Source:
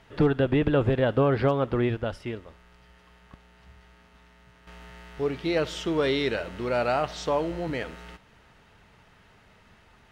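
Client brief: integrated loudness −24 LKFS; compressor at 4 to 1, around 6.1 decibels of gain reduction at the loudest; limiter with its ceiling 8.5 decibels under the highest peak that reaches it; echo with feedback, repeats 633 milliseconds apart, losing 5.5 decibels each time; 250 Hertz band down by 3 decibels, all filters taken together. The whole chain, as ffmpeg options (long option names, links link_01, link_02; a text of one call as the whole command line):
ffmpeg -i in.wav -af "equalizer=frequency=250:width_type=o:gain=-4,acompressor=threshold=-26dB:ratio=4,alimiter=level_in=1.5dB:limit=-24dB:level=0:latency=1,volume=-1.5dB,aecho=1:1:633|1266|1899|2532|3165|3798|4431:0.531|0.281|0.149|0.079|0.0419|0.0222|0.0118,volume=11dB" out.wav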